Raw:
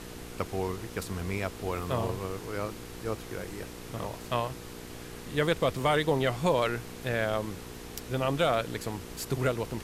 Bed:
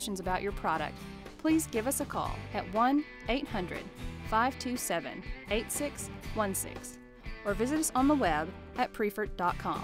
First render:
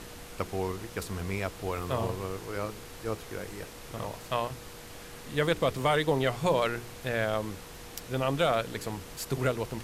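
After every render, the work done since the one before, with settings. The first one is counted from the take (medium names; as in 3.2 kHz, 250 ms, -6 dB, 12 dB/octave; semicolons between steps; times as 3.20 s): de-hum 60 Hz, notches 7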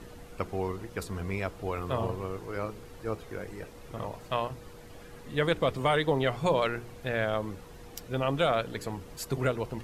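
noise reduction 10 dB, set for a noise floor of -46 dBFS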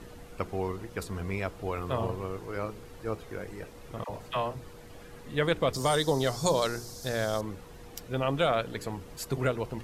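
4.04–4.65 s: phase dispersion lows, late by 48 ms, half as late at 810 Hz; 5.73–7.41 s: resonant high shelf 3.7 kHz +12.5 dB, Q 3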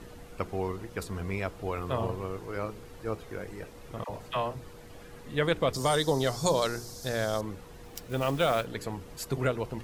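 7.84–8.67 s: block-companded coder 5-bit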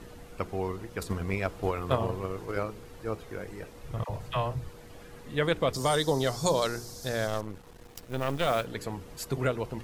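1.01–2.63 s: transient shaper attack +9 dB, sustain +2 dB; 3.83–4.70 s: resonant low shelf 170 Hz +7 dB, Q 1.5; 7.27–8.47 s: partial rectifier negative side -12 dB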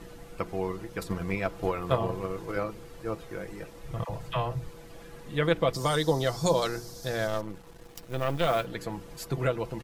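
dynamic bell 8.3 kHz, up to -4 dB, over -50 dBFS, Q 0.8; comb 6 ms, depth 43%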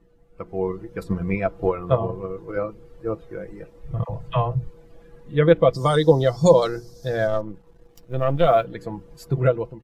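level rider gain up to 8.5 dB; spectral contrast expander 1.5:1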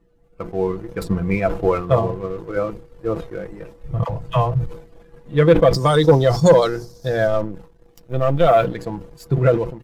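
waveshaping leveller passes 1; decay stretcher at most 110 dB/s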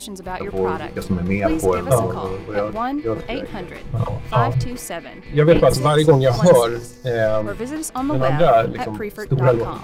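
add bed +3.5 dB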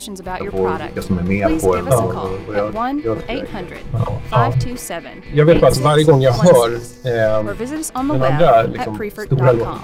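trim +3 dB; peak limiter -1 dBFS, peak gain reduction 2 dB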